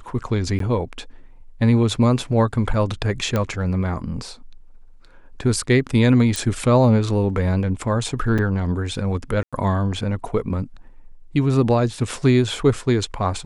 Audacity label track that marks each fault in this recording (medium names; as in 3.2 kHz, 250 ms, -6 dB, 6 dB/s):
0.590000	0.600000	dropout 13 ms
3.360000	3.360000	pop -9 dBFS
6.360000	6.360000	pop
8.380000	8.390000	dropout 6 ms
9.430000	9.530000	dropout 96 ms